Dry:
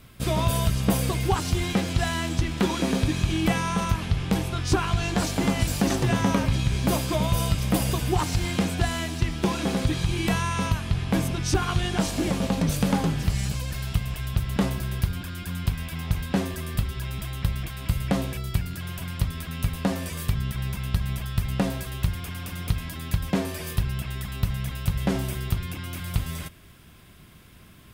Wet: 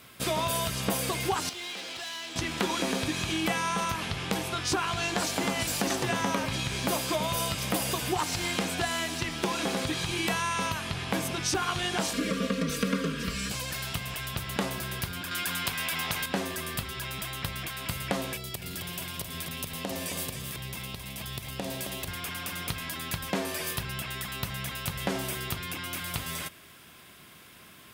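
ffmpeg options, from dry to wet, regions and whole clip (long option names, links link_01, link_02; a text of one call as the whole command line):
ffmpeg -i in.wav -filter_complex "[0:a]asettb=1/sr,asplit=3[link_01][link_02][link_03];[link_01]atrim=end=1.494[link_04];[link_02]atrim=start=1.49:end=2.36,asetpts=PTS-STARTPTS,afade=type=in:duration=0.004:curve=qsin,afade=type=out:start_time=0.866:duration=0.004:curve=qsin,acrossover=split=300 4800:gain=0.0631 1 0.178[link_05][link_06][link_07];[link_05][link_06][link_07]amix=inputs=3:normalize=0,acrossover=split=140|3000[link_08][link_09][link_10];[link_09]acompressor=threshold=-43dB:ratio=4:attack=3.2:release=140:knee=2.83:detection=peak[link_11];[link_08][link_11][link_10]amix=inputs=3:normalize=0,asoftclip=type=hard:threshold=-37dB[link_12];[link_03]atrim=start=2.356[link_13];[link_04][link_12]acrossfade=duration=0.004:curve1=hsin:curve2=qsin[link_14];[link_14][link_13]acrossfade=duration=0.004:curve1=qsin:curve2=hsin,asettb=1/sr,asplit=3[link_15][link_16][link_17];[link_15]atrim=end=12.134[link_18];[link_16]atrim=start=12.13:end=13.51,asetpts=PTS-STARTPTS,afade=type=in:duration=0.004:curve=qsin,afade=type=out:start_time=1.376:duration=0.004:curve=qsin,asuperstop=centerf=800:order=12:qfactor=2.1,highshelf=frequency=3900:gain=-9,aecho=1:1:4.3:0.97,atrim=end_sample=60858[link_19];[link_17]atrim=start=13.506[link_20];[link_18][link_19]acrossfade=duration=0.004:curve1=hsin:curve2=qsin[link_21];[link_21][link_20]acrossfade=duration=0.004:curve1=qsin:curve2=hsin,asettb=1/sr,asplit=3[link_22][link_23][link_24];[link_22]atrim=end=15.314[link_25];[link_23]atrim=start=15.31:end=16.26,asetpts=PTS-STARTPTS,afade=type=in:duration=0.004:curve=qsin,afade=type=out:start_time=0.946:duration=0.004:curve=qsin,highpass=47,acontrast=71,lowshelf=frequency=280:gain=-10.5[link_26];[link_24]atrim=start=16.256[link_27];[link_25][link_26]acrossfade=duration=0.004:curve1=hsin:curve2=qsin[link_28];[link_28][link_27]acrossfade=duration=0.004:curve1=qsin:curve2=hsin,asettb=1/sr,asplit=3[link_29][link_30][link_31];[link_29]atrim=end=18.354[link_32];[link_30]atrim=start=18.35:end=22.08,asetpts=PTS-STARTPTS,afade=type=in:duration=0.004:curve=qsin,afade=type=out:start_time=3.726:duration=0.004:curve=qsin,equalizer=frequency=1400:width=1.5:gain=-7.5,acompressor=threshold=-27dB:ratio=6:attack=3.2:release=140:knee=1:detection=peak,aecho=1:1:267:0.447,atrim=end_sample=164493[link_33];[link_31]atrim=start=22.076[link_34];[link_32][link_33]acrossfade=duration=0.004:curve1=hsin:curve2=qsin[link_35];[link_35][link_34]acrossfade=duration=0.004:curve1=qsin:curve2=hsin,highpass=frequency=520:poles=1,acompressor=threshold=-32dB:ratio=2,volume=4dB" out.wav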